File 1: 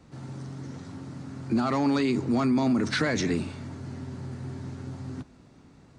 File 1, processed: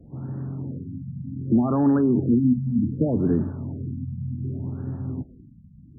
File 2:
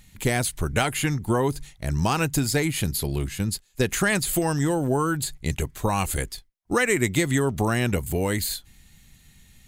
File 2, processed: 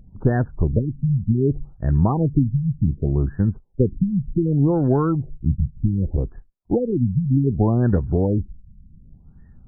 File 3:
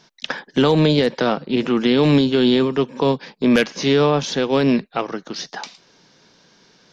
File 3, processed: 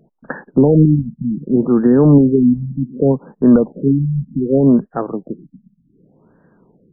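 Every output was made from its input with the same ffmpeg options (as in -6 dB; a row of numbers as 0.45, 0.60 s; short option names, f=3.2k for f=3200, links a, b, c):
-af "crystalizer=i=4.5:c=0,tiltshelf=f=700:g=8,afftfilt=real='re*lt(b*sr/1024,230*pow(1900/230,0.5+0.5*sin(2*PI*0.66*pts/sr)))':imag='im*lt(b*sr/1024,230*pow(1900/230,0.5+0.5*sin(2*PI*0.66*pts/sr)))':win_size=1024:overlap=0.75"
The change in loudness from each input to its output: +3.5, +3.5, +3.5 LU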